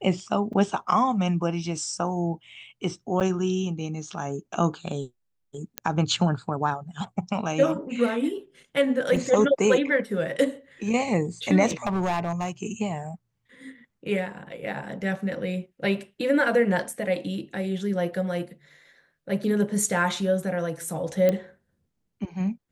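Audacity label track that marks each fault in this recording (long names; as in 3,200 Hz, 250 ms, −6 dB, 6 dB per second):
0.530000	0.530000	drop-out 4.5 ms
3.200000	3.210000	drop-out 8.1 ms
5.780000	5.780000	click −10 dBFS
9.160000	9.160000	drop-out 3.1 ms
11.660000	12.490000	clipping −21.5 dBFS
21.290000	21.290000	click −11 dBFS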